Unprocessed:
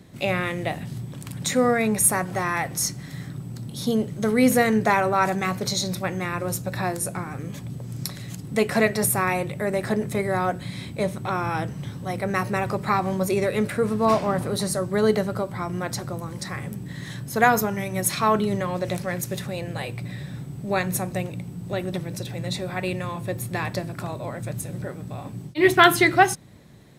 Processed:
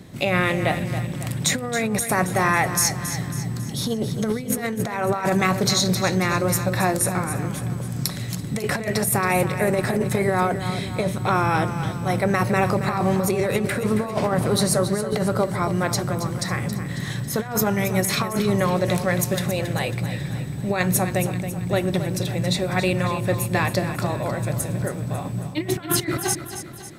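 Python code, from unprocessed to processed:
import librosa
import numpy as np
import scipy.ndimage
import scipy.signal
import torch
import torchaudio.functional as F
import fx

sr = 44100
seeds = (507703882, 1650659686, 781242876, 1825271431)

y = fx.over_compress(x, sr, threshold_db=-24.0, ratio=-0.5)
y = fx.echo_feedback(y, sr, ms=274, feedback_pct=50, wet_db=-10.5)
y = y * librosa.db_to_amplitude(3.5)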